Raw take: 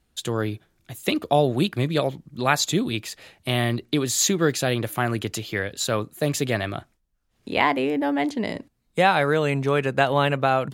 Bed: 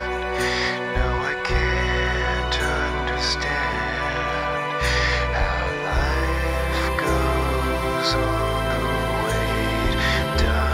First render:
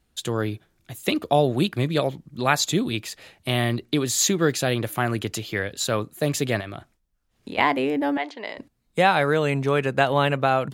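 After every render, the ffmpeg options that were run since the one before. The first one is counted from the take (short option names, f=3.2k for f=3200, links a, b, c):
-filter_complex "[0:a]asettb=1/sr,asplit=3[a][b][c];[a]atrim=end=6.604[d];[b]atrim=start=6.6:end=7.58,asetpts=PTS-STARTPTS,afade=t=in:d=0.004:c=qsin,afade=t=out:st=0.976:d=0.004:c=qsin,acompressor=threshold=-30dB:ratio=5:attack=3.2:release=140:knee=1:detection=peak[e];[c]atrim=start=7.576[f];[d][e]acrossfade=d=0.004:c1=hsin:c2=qsin[g];[g][f]acrossfade=d=0.004:c1=qsin:c2=hsin,asettb=1/sr,asplit=3[h][i][j];[h]atrim=end=8.174[k];[i]atrim=start=8.17:end=8.58,asetpts=PTS-STARTPTS,afade=t=in:d=0.004:c=qsin,afade=t=out:st=0.406:d=0.004:c=qsin,highpass=650,lowpass=4.1k[l];[j]atrim=start=8.576[m];[k][l]acrossfade=d=0.004:c1=hsin:c2=qsin[n];[n][m]acrossfade=d=0.004:c1=qsin:c2=hsin"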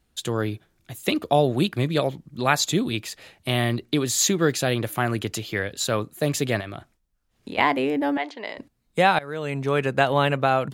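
-filter_complex "[0:a]asplit=2[a][b];[a]atrim=end=9.19,asetpts=PTS-STARTPTS,afade=t=out:st=9.186:d=0.004:c=hsin:silence=0.0841395[c];[b]atrim=start=9.19,asetpts=PTS-STARTPTS,afade=t=in:d=0.62:silence=0.0841395[d];[c][d]concat=n=2:v=0:a=1"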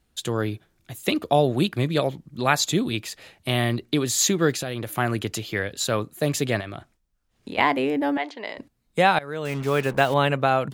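-filter_complex "[0:a]asettb=1/sr,asplit=3[a][b][c];[a]atrim=end=4.524[d];[b]atrim=start=4.52:end=4.95,asetpts=PTS-STARTPTS,afade=t=in:d=0.004:c=qsin,afade=t=out:st=0.426:d=0.004:c=qsin,acompressor=threshold=-25dB:ratio=5:attack=3.2:release=140:knee=1:detection=peak[e];[c]atrim=start=4.946[f];[d][e]acrossfade=d=0.004:c1=hsin:c2=qsin[g];[g][f]acrossfade=d=0.004:c1=qsin:c2=hsin,asettb=1/sr,asplit=3[h][i][j];[h]atrim=end=6.444[k];[i]atrim=start=6.44:end=7.49,asetpts=PTS-STARTPTS,afade=t=in:d=0.004:c=qsin,afade=t=out:st=1.046:d=0.004:c=qsin,equalizer=f=12k:w=5.8:g=-8.5[l];[j]atrim=start=7.486[m];[k][l]acrossfade=d=0.004:c1=hsin:c2=qsin[n];[n][m]acrossfade=d=0.004:c1=qsin:c2=hsin,asettb=1/sr,asplit=3[o][p][q];[o]atrim=end=9.454[r];[p]atrim=start=9.45:end=10.14,asetpts=PTS-STARTPTS,afade=t=in:d=0.004:c=qsin,afade=t=out:st=0.686:d=0.004:c=qsin,acrusher=bits=5:mix=0:aa=0.5[s];[q]atrim=start=10.136[t];[r][s]acrossfade=d=0.004:c1=hsin:c2=qsin[u];[u][t]acrossfade=d=0.004:c1=qsin:c2=hsin"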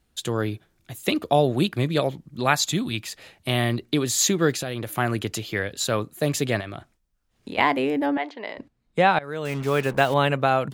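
-filter_complex "[0:a]asettb=1/sr,asplit=3[a][b][c];[a]atrim=end=2.544[d];[b]atrim=start=2.54:end=3.08,asetpts=PTS-STARTPTS,afade=t=in:d=0.004:c=qsin,afade=t=out:st=0.536:d=0.004:c=qsin,equalizer=f=450:w=1.5:g=-8.5[e];[c]atrim=start=3.076[f];[d][e]acrossfade=d=0.004:c1=hsin:c2=qsin[g];[g][f]acrossfade=d=0.004:c1=qsin:c2=hsin,asettb=1/sr,asplit=3[h][i][j];[h]atrim=end=8.064[k];[i]atrim=start=8.06:end=9.24,asetpts=PTS-STARTPTS,afade=t=in:d=0.004:c=qsin,afade=t=out:st=1.176:d=0.004:c=qsin,aemphasis=mode=reproduction:type=50fm[l];[j]atrim=start=9.236[m];[k][l]acrossfade=d=0.004:c1=hsin:c2=qsin[n];[n][m]acrossfade=d=0.004:c1=qsin:c2=hsin"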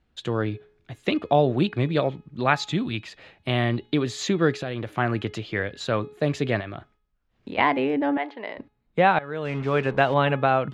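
-af "lowpass=3.1k,bandreject=f=421.2:t=h:w=4,bandreject=f=842.4:t=h:w=4,bandreject=f=1.2636k:t=h:w=4,bandreject=f=1.6848k:t=h:w=4,bandreject=f=2.106k:t=h:w=4,bandreject=f=2.5272k:t=h:w=4,bandreject=f=2.9484k:t=h:w=4,bandreject=f=3.3696k:t=h:w=4,bandreject=f=3.7908k:t=h:w=4,bandreject=f=4.212k:t=h:w=4"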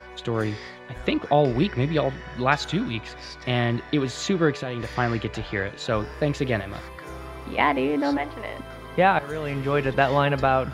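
-filter_complex "[1:a]volume=-17dB[a];[0:a][a]amix=inputs=2:normalize=0"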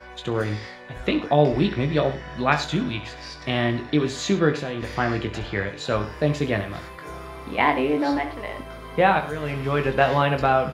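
-filter_complex "[0:a]asplit=2[a][b];[b]adelay=20,volume=-7dB[c];[a][c]amix=inputs=2:normalize=0,asplit=2[d][e];[e]aecho=0:1:67|104:0.224|0.141[f];[d][f]amix=inputs=2:normalize=0"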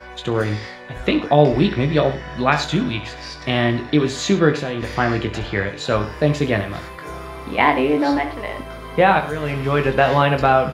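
-af "volume=4.5dB,alimiter=limit=-1dB:level=0:latency=1"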